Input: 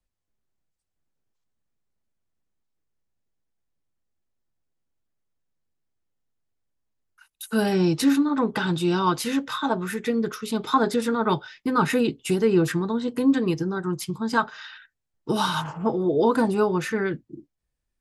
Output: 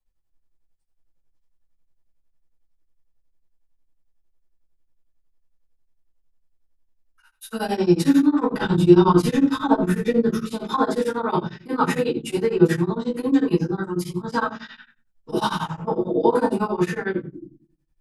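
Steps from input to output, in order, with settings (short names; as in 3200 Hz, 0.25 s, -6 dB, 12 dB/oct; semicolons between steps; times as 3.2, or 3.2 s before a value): 8.53–10.41 low shelf 330 Hz +11 dB; shoebox room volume 260 m³, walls furnished, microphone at 5.8 m; beating tremolo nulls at 11 Hz; gain -7.5 dB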